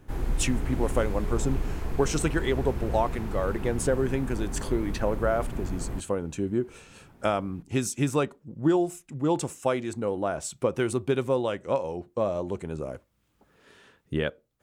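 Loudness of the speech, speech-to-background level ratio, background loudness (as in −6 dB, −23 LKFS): −29.0 LKFS, 5.5 dB, −34.5 LKFS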